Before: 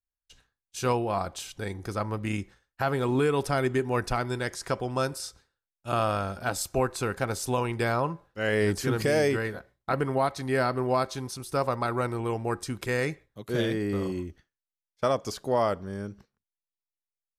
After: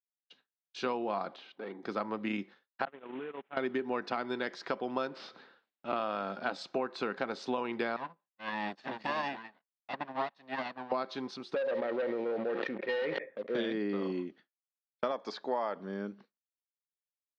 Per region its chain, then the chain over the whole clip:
1.36–1.83 s: high-pass 230 Hz + hard clipper -33.5 dBFS + tape spacing loss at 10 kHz 28 dB
2.85–3.57 s: one-bit delta coder 16 kbps, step -27.5 dBFS + gate -24 dBFS, range -41 dB + compression 16:1, threshold -35 dBFS
5.07–5.96 s: peaking EQ 9.7 kHz -8.5 dB 2.2 oct + upward compressor, threshold -34 dBFS + sliding maximum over 3 samples
7.96–10.92 s: comb filter that takes the minimum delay 1.1 ms + bass shelf 360 Hz -4.5 dB + upward expansion 2.5:1, over -41 dBFS
11.54–13.55 s: cascade formant filter e + waveshaping leveller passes 3 + decay stretcher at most 27 dB/s
15.11–15.76 s: bass shelf 250 Hz -10 dB + band-stop 2.9 kHz, Q 6 + small resonant body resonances 880/1700 Hz, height 7 dB, ringing for 25 ms
whole clip: elliptic band-pass 210–4100 Hz, stop band 50 dB; expander -55 dBFS; compression, threshold -29 dBFS

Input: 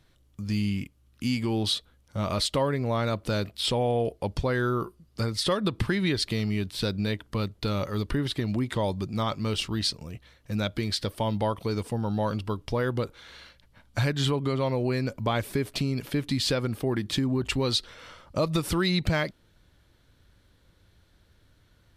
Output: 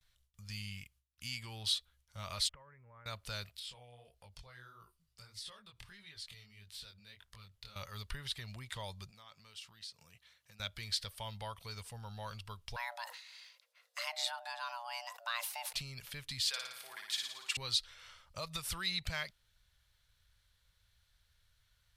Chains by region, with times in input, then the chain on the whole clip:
2.49–3.06 s: inverse Chebyshev low-pass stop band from 3.8 kHz + band-stop 710 Hz, Q 5.6 + compression 20:1, threshold -36 dBFS
3.59–7.76 s: compression 4:1, threshold -35 dBFS + chorus 1.6 Hz, delay 18.5 ms, depth 6.8 ms
9.10–10.60 s: high-pass 150 Hz + compression, threshold -39 dBFS
12.76–15.73 s: bass shelf 290 Hz -9 dB + frequency shift +470 Hz + decay stretcher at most 96 dB/s
16.48–17.57 s: high-pass 830 Hz + flutter echo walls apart 9.7 m, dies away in 0.83 s
whole clip: gate with hold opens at -53 dBFS; amplifier tone stack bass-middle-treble 10-0-10; trim -4 dB

